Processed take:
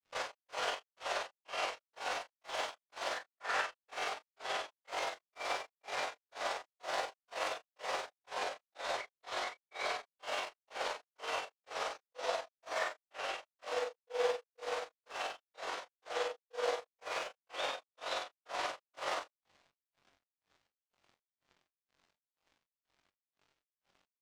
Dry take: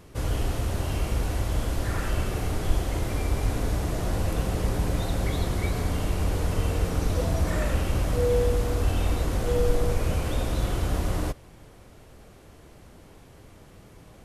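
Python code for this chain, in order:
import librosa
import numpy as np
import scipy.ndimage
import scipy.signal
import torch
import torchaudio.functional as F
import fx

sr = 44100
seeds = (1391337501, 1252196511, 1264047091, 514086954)

p1 = scipy.signal.sosfilt(scipy.signal.butter(4, 610.0, 'highpass', fs=sr, output='sos'), x)
p2 = fx.echo_feedback(p1, sr, ms=284, feedback_pct=51, wet_db=-21.5)
p3 = np.repeat(p2[::2], 2)[:len(p2)]
p4 = fx.high_shelf(p3, sr, hz=3200.0, db=7.0)
p5 = p4 + fx.room_flutter(p4, sr, wall_m=10.6, rt60_s=0.41, dry=0)
p6 = np.sign(p5) * np.maximum(np.abs(p5) - 10.0 ** (-48.5 / 20.0), 0.0)
p7 = fx.air_absorb(p6, sr, metres=140.0)
p8 = fx.rider(p7, sr, range_db=10, speed_s=2.0)
p9 = fx.granulator(p8, sr, seeds[0], grain_ms=198.0, per_s=3.5, spray_ms=100.0, spread_st=0)
p10 = fx.stretch_grains(p9, sr, factor=1.7, grain_ms=106.0)
y = p10 * librosa.db_to_amplitude(4.5)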